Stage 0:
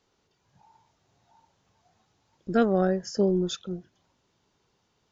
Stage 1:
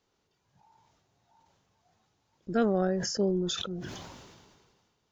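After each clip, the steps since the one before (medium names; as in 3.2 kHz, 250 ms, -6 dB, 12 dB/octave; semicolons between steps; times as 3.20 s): decay stretcher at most 33 dB/s; trim -4.5 dB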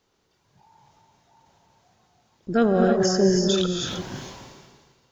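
gated-style reverb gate 350 ms rising, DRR 1.5 dB; trim +6 dB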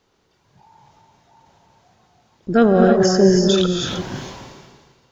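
treble shelf 6.1 kHz -6.5 dB; trim +6 dB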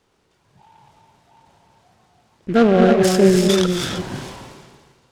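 delay time shaken by noise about 1.8 kHz, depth 0.033 ms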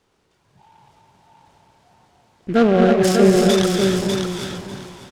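feedback delay 597 ms, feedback 18%, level -5 dB; trim -1 dB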